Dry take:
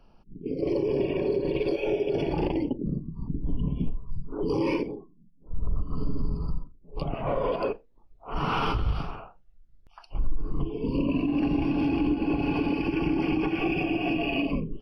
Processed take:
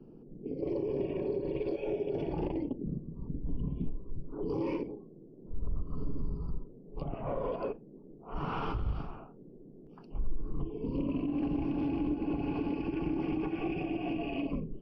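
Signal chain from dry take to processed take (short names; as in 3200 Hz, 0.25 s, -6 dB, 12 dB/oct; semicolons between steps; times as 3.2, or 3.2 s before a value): band noise 130–430 Hz -46 dBFS; high shelf 2000 Hz -11 dB; Doppler distortion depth 0.14 ms; gain -6.5 dB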